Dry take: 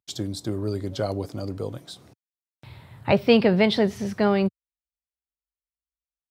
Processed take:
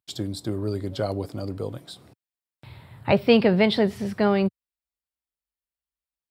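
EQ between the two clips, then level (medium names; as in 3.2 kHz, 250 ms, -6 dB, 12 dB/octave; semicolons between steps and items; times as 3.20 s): peaking EQ 6.2 kHz -9.5 dB 0.25 oct; 0.0 dB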